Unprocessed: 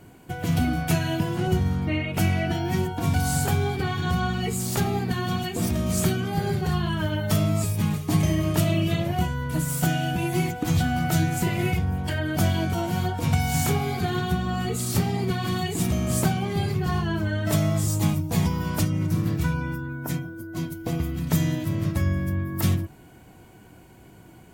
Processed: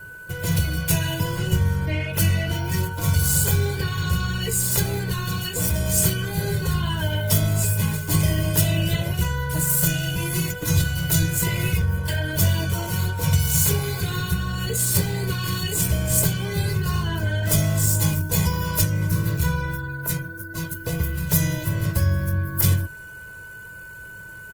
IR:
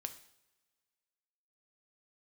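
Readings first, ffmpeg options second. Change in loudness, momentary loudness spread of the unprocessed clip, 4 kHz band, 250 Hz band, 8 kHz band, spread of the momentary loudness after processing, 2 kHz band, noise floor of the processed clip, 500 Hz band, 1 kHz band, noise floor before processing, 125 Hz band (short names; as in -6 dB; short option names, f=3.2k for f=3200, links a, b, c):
+3.0 dB, 4 LU, +4.5 dB, -2.5 dB, +9.0 dB, 8 LU, +3.5 dB, -39 dBFS, -1.0 dB, -4.0 dB, -49 dBFS, +2.5 dB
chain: -filter_complex "[0:a]highshelf=f=6.6k:g=10.5,aeval=exprs='val(0)+0.00708*sin(2*PI*1500*n/s)':c=same,equalizer=f=360:t=o:w=0.23:g=-9,acrossover=split=500|2200[a][b][c];[b]asoftclip=type=tanh:threshold=-34.5dB[d];[a][d][c]amix=inputs=3:normalize=0,aecho=1:1:2:0.95" -ar 48000 -c:a libopus -b:a 20k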